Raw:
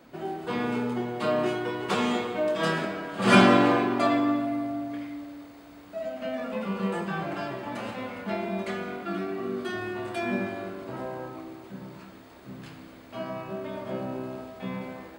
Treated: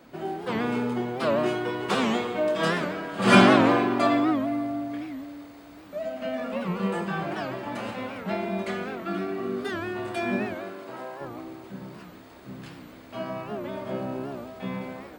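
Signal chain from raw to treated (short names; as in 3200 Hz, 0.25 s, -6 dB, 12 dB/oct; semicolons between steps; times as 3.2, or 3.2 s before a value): 10.54–11.2 HPF 240 Hz -> 890 Hz 6 dB/oct; record warp 78 rpm, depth 160 cents; gain +1.5 dB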